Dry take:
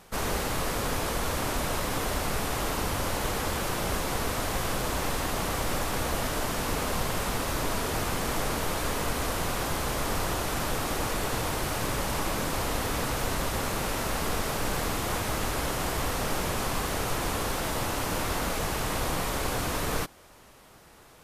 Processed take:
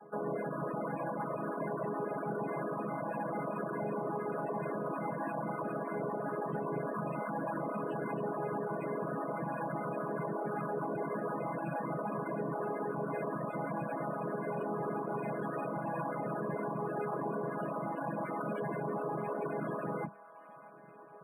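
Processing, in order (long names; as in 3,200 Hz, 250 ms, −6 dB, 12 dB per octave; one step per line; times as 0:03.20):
channel vocoder with a chord as carrier minor triad, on C#3
high-pass filter 200 Hz 12 dB per octave
mains-hum notches 50/100/150/200/250/300/350/400/450 Hz
reverb reduction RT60 0.81 s
low-shelf EQ 270 Hz −5 dB
brickwall limiter −33.5 dBFS, peak gain reduction 8 dB
hard clipping −35.5 dBFS, distortion −25 dB
spectral peaks only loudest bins 32
on a send: delay with a band-pass on its return 631 ms, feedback 63%, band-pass 1,400 Hz, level −18 dB
on the sum: linearly interpolated sample-rate reduction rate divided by 4×
level +6.5 dB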